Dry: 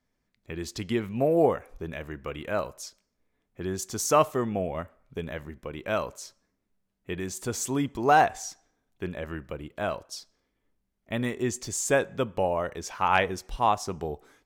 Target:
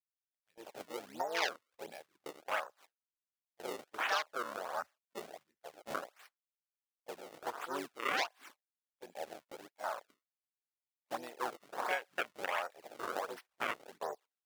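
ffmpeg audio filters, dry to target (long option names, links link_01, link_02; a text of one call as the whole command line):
ffmpeg -i in.wav -filter_complex "[0:a]asplit=2[link_01][link_02];[link_02]asetrate=58866,aresample=44100,atempo=0.749154,volume=-4dB[link_03];[link_01][link_03]amix=inputs=2:normalize=0,tremolo=f=2.7:d=0.62,acrusher=samples=31:mix=1:aa=0.000001:lfo=1:lforange=49.6:lforate=1.4,afwtdn=0.0224,highpass=1100,agate=range=-18dB:threshold=-60dB:ratio=16:detection=peak,acompressor=threshold=-40dB:ratio=3,volume=6dB" out.wav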